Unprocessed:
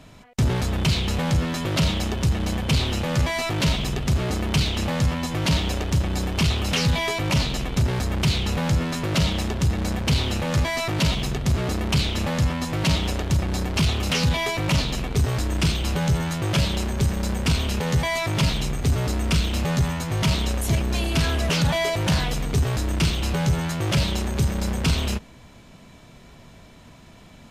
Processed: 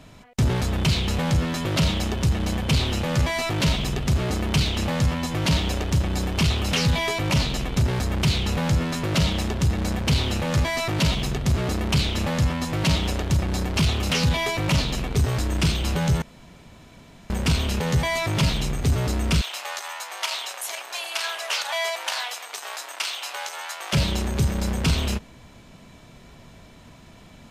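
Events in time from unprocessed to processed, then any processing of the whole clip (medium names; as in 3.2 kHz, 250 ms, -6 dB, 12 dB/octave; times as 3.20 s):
16.22–17.30 s: room tone
19.41–23.93 s: high-pass 720 Hz 24 dB/octave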